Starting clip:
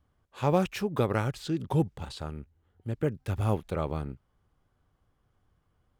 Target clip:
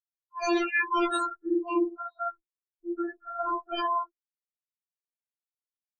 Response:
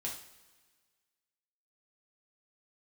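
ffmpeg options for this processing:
-filter_complex "[0:a]afftfilt=real='re':imag='-im':win_size=4096:overlap=0.75,acrossover=split=820|1700[link_01][link_02][link_03];[link_02]aeval=exprs='0.0376*sin(PI/2*7.94*val(0)/0.0376)':channel_layout=same[link_04];[link_01][link_04][link_03]amix=inputs=3:normalize=0,crystalizer=i=2:c=0,acontrast=85,asplit=2[link_05][link_06];[link_06]aecho=0:1:114|228|342|456:0.178|0.0818|0.0376|0.0173[link_07];[link_05][link_07]amix=inputs=2:normalize=0,afftfilt=real='re*gte(hypot(re,im),0.158)':imag='im*gte(hypot(re,im),0.158)':win_size=1024:overlap=0.75,bandreject=frequency=60:width_type=h:width=6,bandreject=frequency=120:width_type=h:width=6,bandreject=frequency=180:width_type=h:width=6,afftfilt=real='re*4*eq(mod(b,16),0)':imag='im*4*eq(mod(b,16),0)':win_size=2048:overlap=0.75"

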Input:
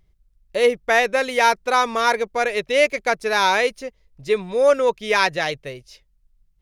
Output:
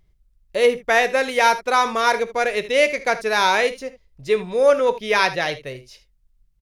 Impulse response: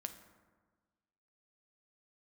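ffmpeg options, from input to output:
-filter_complex "[0:a]asettb=1/sr,asplit=3[link_01][link_02][link_03];[link_01]atrim=end=4.664[link_04];[link_02]atrim=start=4.66:end=5.67,asetpts=PTS-STARTPTS,afade=type=in:duration=0.004:curve=qsin,afade=type=out:start_time=1.006:duration=0.004:curve=qsin,equalizer=frequency=7700:width=4:gain=-9.5[link_05];[link_03]atrim=start=5.666[link_06];[link_04][link_05]acrossfade=duration=0.004:curve1=hsin:curve2=qsin[link_07];[link_07][link_06]acrossfade=duration=0.004:curve1=qsin:curve2=hsin,aecho=1:1:23|53|77:0.15|0.133|0.168"

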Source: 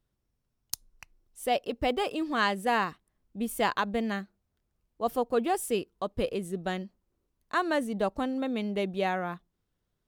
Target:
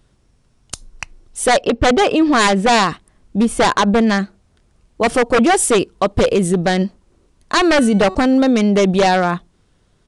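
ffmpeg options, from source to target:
ffmpeg -i in.wav -filter_complex "[0:a]asettb=1/sr,asplit=3[link_01][link_02][link_03];[link_01]atrim=end=1.614[link_04];[link_02]atrim=start=1.61:end=2.7,asetpts=PTS-STARTPTS,afade=type=in:duration=0.004:curve=qsin,afade=type=out:start_time=1.086:duration=0.004:curve=qsin,adynamicsmooth=sensitivity=4:basefreq=4400[link_05];[link_03]atrim=start=2.696[link_06];[link_04][link_05]acrossfade=duration=0.004:curve1=hsin:curve2=qsin[link_07];[link_07][link_06]acrossfade=duration=0.004:curve1=qsin:curve2=hsin,asettb=1/sr,asplit=3[link_08][link_09][link_10];[link_08]atrim=end=3.434[link_11];[link_09]atrim=start=3.43:end=4.07,asetpts=PTS-STARTPTS,afade=type=in:duration=0.004:curve=qsin,afade=type=out:start_time=0.636:duration=0.004:curve=qsin,highshelf=frequency=3800:gain=-9.5[link_12];[link_10]atrim=start=4.066[link_13];[link_11][link_12]acrossfade=duration=0.004:curve1=hsin:curve2=qsin[link_14];[link_14][link_13]acrossfade=duration=0.004:curve1=qsin:curve2=hsin,asettb=1/sr,asplit=3[link_15][link_16][link_17];[link_15]atrim=end=7.724[link_18];[link_16]atrim=start=7.72:end=8.15,asetpts=PTS-STARTPTS,afade=type=in:duration=0.004:curve=qsin,afade=type=out:start_time=0.426:duration=0.004:curve=qsin,bandreject=frequency=375.7:width_type=h:width=4,bandreject=frequency=751.4:width_type=h:width=4,bandreject=frequency=1127.1:width_type=h:width=4,bandreject=frequency=1502.8:width_type=h:width=4,bandreject=frequency=1878.5:width_type=h:width=4,bandreject=frequency=2254.2:width_type=h:width=4,bandreject=frequency=2629.9:width_type=h:width=4,bandreject=frequency=3005.6:width_type=h:width=4,bandreject=frequency=3381.3:width_type=h:width=4,bandreject=frequency=3757:width_type=h:width=4,bandreject=frequency=4132.7:width_type=h:width=4,bandreject=frequency=4508.4:width_type=h:width=4,bandreject=frequency=4884.1:width_type=h:width=4,bandreject=frequency=5259.8:width_type=h:width=4,bandreject=frequency=5635.5:width_type=h:width=4,bandreject=frequency=6011.2:width_type=h:width=4,bandreject=frequency=6386.9:width_type=h:width=4,bandreject=frequency=6762.6:width_type=h:width=4,bandreject=frequency=7138.3:width_type=h:width=4,bandreject=frequency=7514:width_type=h:width=4,bandreject=frequency=7889.7:width_type=h:width=4,bandreject=frequency=8265.4:width_type=h:width=4,bandreject=frequency=8641.1:width_type=h:width=4[link_19];[link_17]atrim=start=8.146[link_20];[link_18][link_19]acrossfade=duration=0.004:curve1=hsin:curve2=qsin[link_21];[link_21][link_20]acrossfade=duration=0.004:curve1=qsin:curve2=hsin,aeval=exprs='0.0631*(abs(mod(val(0)/0.0631+3,4)-2)-1)':channel_layout=same,aresample=22050,aresample=44100,alimiter=level_in=28dB:limit=-1dB:release=50:level=0:latency=1,volume=-6dB" out.wav

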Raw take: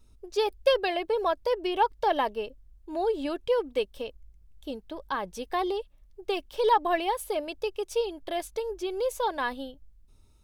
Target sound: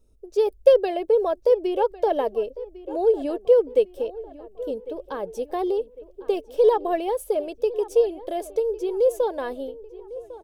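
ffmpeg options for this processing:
ffmpeg -i in.wav -filter_complex "[0:a]asplit=2[link_01][link_02];[link_02]adelay=1102,lowpass=frequency=2700:poles=1,volume=-17dB,asplit=2[link_03][link_04];[link_04]adelay=1102,lowpass=frequency=2700:poles=1,volume=0.48,asplit=2[link_05][link_06];[link_06]adelay=1102,lowpass=frequency=2700:poles=1,volume=0.48,asplit=2[link_07][link_08];[link_08]adelay=1102,lowpass=frequency=2700:poles=1,volume=0.48[link_09];[link_03][link_05][link_07][link_09]amix=inputs=4:normalize=0[link_10];[link_01][link_10]amix=inputs=2:normalize=0,dynaudnorm=framelen=270:gausssize=3:maxgain=3.5dB,equalizer=frequency=125:width_type=o:width=1:gain=-3,equalizer=frequency=500:width_type=o:width=1:gain=11,equalizer=frequency=1000:width_type=o:width=1:gain=-6,equalizer=frequency=2000:width_type=o:width=1:gain=-6,equalizer=frequency=4000:width_type=o:width=1:gain=-6,volume=-3.5dB" out.wav

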